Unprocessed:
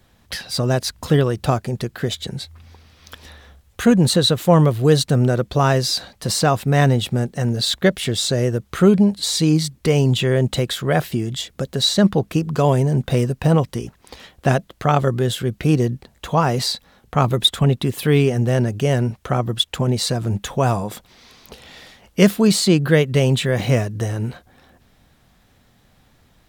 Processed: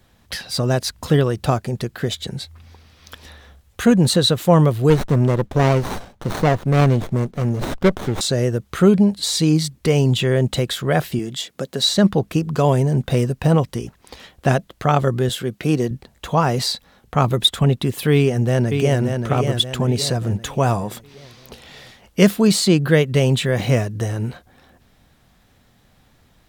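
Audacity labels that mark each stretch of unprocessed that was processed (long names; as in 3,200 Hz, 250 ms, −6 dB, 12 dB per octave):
4.900000	8.210000	windowed peak hold over 17 samples
11.190000	11.860000	high-pass filter 180 Hz
15.290000	15.910000	Bessel high-pass filter 170 Hz
18.130000	19.010000	delay throw 580 ms, feedback 45%, level −5.5 dB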